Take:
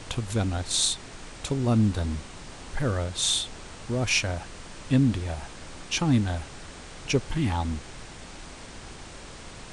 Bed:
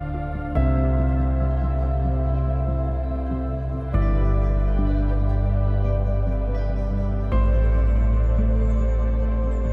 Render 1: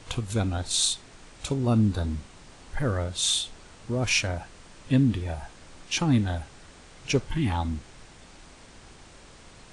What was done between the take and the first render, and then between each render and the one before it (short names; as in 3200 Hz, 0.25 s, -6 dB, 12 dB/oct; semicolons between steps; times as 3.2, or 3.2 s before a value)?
noise print and reduce 7 dB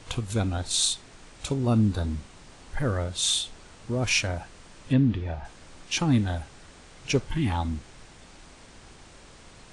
4.93–5.45 air absorption 160 m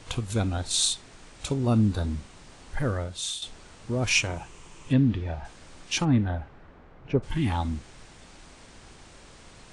2.81–3.42 fade out, to -11.5 dB; 4.15–4.91 ripple EQ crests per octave 0.71, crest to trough 7 dB; 6.04–7.22 LPF 2300 Hz -> 1100 Hz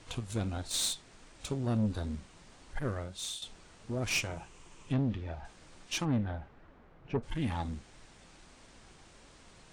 flange 1.5 Hz, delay 2.8 ms, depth 3.8 ms, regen +72%; tube stage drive 24 dB, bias 0.55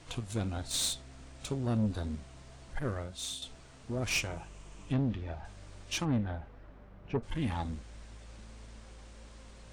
add bed -31.5 dB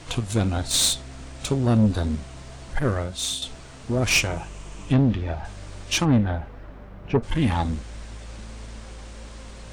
gain +11.5 dB